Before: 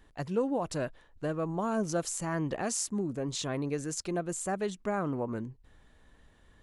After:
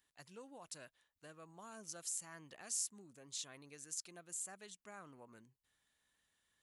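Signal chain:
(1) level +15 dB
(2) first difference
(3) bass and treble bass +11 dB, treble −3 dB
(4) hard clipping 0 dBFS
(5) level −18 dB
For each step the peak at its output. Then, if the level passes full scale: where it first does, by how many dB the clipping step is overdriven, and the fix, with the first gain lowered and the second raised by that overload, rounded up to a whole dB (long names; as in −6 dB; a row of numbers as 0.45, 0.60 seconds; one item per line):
−2.0, −2.0, −4.0, −4.0, −22.0 dBFS
no step passes full scale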